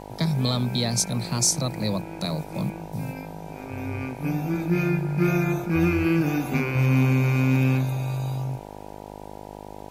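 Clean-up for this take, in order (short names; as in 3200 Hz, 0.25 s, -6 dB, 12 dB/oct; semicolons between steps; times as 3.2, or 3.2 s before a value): clip repair -12 dBFS; de-hum 51.1 Hz, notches 19; expander -32 dBFS, range -21 dB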